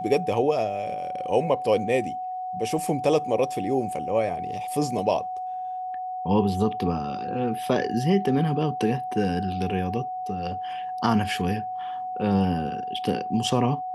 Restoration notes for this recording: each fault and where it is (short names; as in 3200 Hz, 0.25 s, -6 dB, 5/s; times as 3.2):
tone 740 Hz -29 dBFS